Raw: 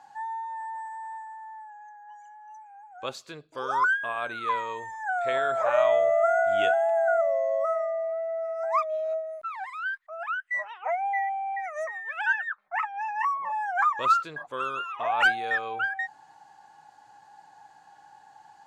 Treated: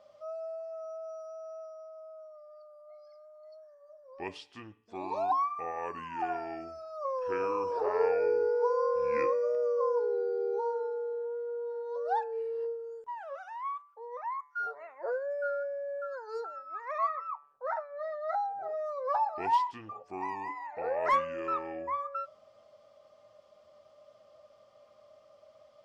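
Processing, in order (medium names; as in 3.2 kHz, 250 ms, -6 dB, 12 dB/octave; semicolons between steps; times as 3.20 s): wide varispeed 0.722×; de-hum 145.1 Hz, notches 18; trim -5.5 dB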